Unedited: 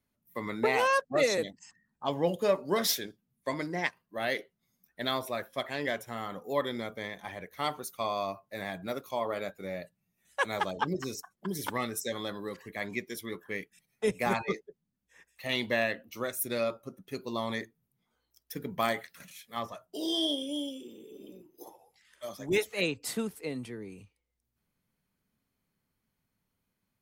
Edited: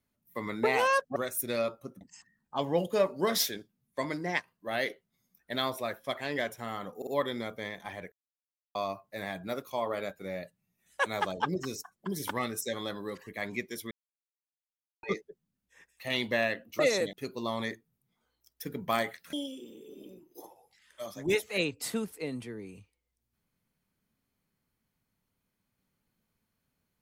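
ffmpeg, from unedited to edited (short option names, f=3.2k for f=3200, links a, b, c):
-filter_complex "[0:a]asplit=12[a][b][c][d][e][f][g][h][i][j][k][l];[a]atrim=end=1.162[m];[b]atrim=start=16.178:end=17.032[n];[c]atrim=start=1.498:end=6.512[o];[d]atrim=start=6.458:end=6.512[p];[e]atrim=start=6.458:end=7.51,asetpts=PTS-STARTPTS,afade=t=out:st=1.048:d=0.004:c=hsin[q];[f]atrim=start=7.51:end=8.14,asetpts=PTS-STARTPTS,volume=0[r];[g]atrim=start=8.14:end=13.3,asetpts=PTS-STARTPTS,afade=t=in:d=0.004:c=hsin,afade=t=out:st=5.156:d=0.004:c=hsin[s];[h]atrim=start=13.3:end=14.42,asetpts=PTS-STARTPTS,volume=0[t];[i]atrim=start=14.42:end=16.182,asetpts=PTS-STARTPTS,afade=t=in:d=0.004:c=hsin[u];[j]atrim=start=1.158:end=1.502[v];[k]atrim=start=17.028:end=19.232[w];[l]atrim=start=20.558[x];[m][n]acrossfade=d=0.004:c1=hsin:c2=hsin[y];[y][o]acrossfade=d=0.004:c1=hsin:c2=hsin[z];[z][p]acrossfade=d=0.004:c1=hsin:c2=hsin[aa];[q][r][s][t][u]concat=n=5:v=0:a=1[ab];[aa][ab]acrossfade=d=0.004:c1=hsin:c2=hsin[ac];[ac][v]acrossfade=d=0.004:c1=hsin:c2=hsin[ad];[ad][w]acrossfade=d=0.004:c1=hsin:c2=hsin[ae];[ae][x]acrossfade=d=0.004:c1=hsin:c2=hsin"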